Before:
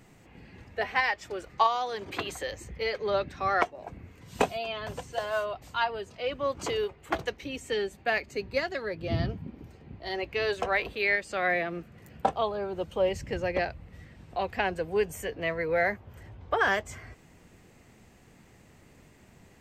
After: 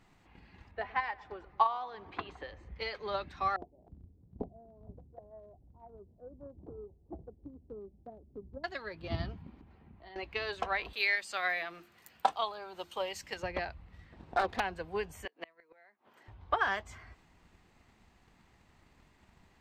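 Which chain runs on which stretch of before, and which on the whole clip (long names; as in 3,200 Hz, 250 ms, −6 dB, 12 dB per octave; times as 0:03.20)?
0:00.71–0:02.76: head-to-tape spacing loss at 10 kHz 28 dB + feedback echo with a low-pass in the loop 110 ms, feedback 72%, low-pass 1,400 Hz, level −18 dB
0:03.56–0:08.64: Gaussian smoothing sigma 19 samples + mains-hum notches 50/100/150 Hz
0:09.61–0:10.16: low-pass filter 2,600 Hz + parametric band 210 Hz +5 dB 0.44 octaves + downward compressor 2.5 to 1, threshold −45 dBFS
0:10.93–0:13.43: RIAA equalisation recording + mains-hum notches 50/100/150/200/250/300/350 Hz
0:14.12–0:14.60: phase distortion by the signal itself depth 0.58 ms + parametric band 410 Hz +11.5 dB 2.4 octaves
0:15.25–0:16.28: high-pass filter 240 Hz 24 dB per octave + gate with flip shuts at −23 dBFS, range −28 dB
whole clip: high-shelf EQ 2,100 Hz −12 dB; transient designer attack +6 dB, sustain +2 dB; octave-band graphic EQ 125/250/500/1,000/4,000 Hz −8/−4/−9/+4/+8 dB; level −4 dB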